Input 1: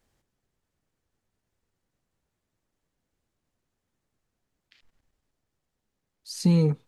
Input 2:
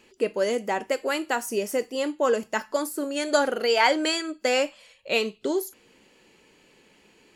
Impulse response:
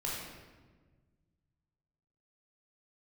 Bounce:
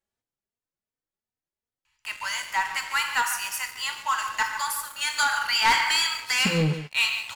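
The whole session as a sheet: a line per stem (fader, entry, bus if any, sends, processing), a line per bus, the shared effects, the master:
-4.5 dB, 0.00 s, no send, echo send -13 dB, bass shelf 200 Hz -9 dB; endless flanger 3.2 ms +2.7 Hz
-8.0 dB, 1.85 s, send -5 dB, echo send -11.5 dB, Chebyshev band-stop 120–920 Hz, order 4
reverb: on, RT60 1.4 s, pre-delay 14 ms
echo: delay 145 ms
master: waveshaping leveller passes 3

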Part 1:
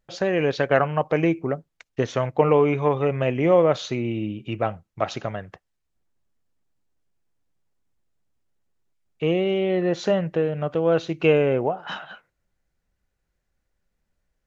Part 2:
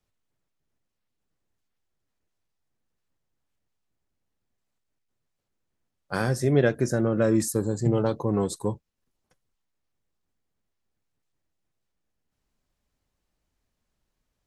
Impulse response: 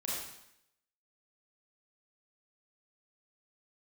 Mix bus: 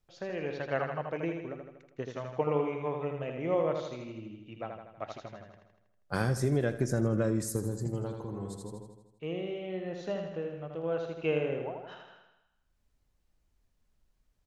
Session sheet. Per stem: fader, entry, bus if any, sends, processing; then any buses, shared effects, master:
-11.5 dB, 0.00 s, no send, echo send -5 dB, upward expansion 1.5:1, over -27 dBFS
-2.0 dB, 0.00 s, no send, echo send -14 dB, bass shelf 92 Hz +10.5 dB; compression, threshold -22 dBFS, peak gain reduction 9 dB; auto duck -19 dB, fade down 2.00 s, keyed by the first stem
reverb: none
echo: feedback delay 80 ms, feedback 57%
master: none

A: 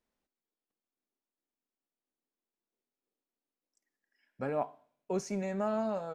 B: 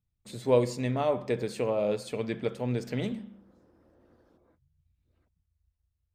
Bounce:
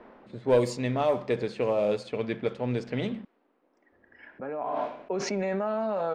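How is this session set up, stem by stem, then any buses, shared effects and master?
+0.5 dB, 0.00 s, no send, three-band isolator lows -15 dB, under 210 Hz, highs -14 dB, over 4.8 kHz; level flattener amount 100%; auto duck -12 dB, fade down 0.70 s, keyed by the second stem
-0.5 dB, 0.00 s, muted 3.25–3.92 s, no send, bass shelf 250 Hz -4.5 dB; waveshaping leveller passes 1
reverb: none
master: level-controlled noise filter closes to 1.2 kHz, open at -19.5 dBFS

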